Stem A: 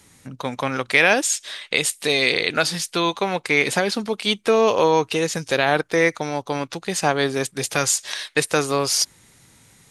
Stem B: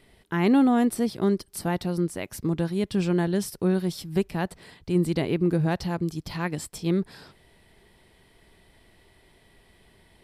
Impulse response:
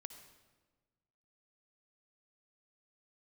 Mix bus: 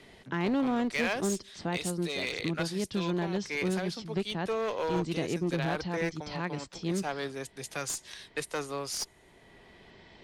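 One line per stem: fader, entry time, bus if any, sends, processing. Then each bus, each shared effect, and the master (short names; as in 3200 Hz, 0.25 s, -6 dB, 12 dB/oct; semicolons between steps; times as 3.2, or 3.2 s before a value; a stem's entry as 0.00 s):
-4.5 dB, 0.00 s, no send, three-band expander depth 70%; auto duck -11 dB, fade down 0.75 s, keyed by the second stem
-6.5 dB, 0.00 s, send -22.5 dB, steep low-pass 6800 Hz 48 dB/oct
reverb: on, RT60 1.4 s, pre-delay 52 ms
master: low shelf 130 Hz -4.5 dB; one-sided clip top -28 dBFS; three-band squash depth 40%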